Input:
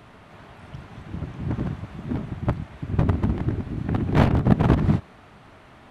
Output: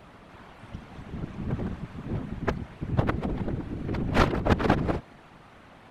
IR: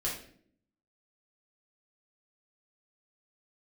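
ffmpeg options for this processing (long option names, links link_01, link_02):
-filter_complex "[0:a]aeval=exprs='0.75*(cos(1*acos(clip(val(0)/0.75,-1,1)))-cos(1*PI/2))+0.237*(cos(7*acos(clip(val(0)/0.75,-1,1)))-cos(7*PI/2))':channel_layout=same,afftfilt=real='hypot(re,im)*cos(2*PI*random(0))':imag='hypot(re,im)*sin(2*PI*random(1))':win_size=512:overlap=0.75,asplit=2[link_01][link_02];[link_02]asetrate=52444,aresample=44100,atempo=0.840896,volume=-13dB[link_03];[link_01][link_03]amix=inputs=2:normalize=0,volume=2dB"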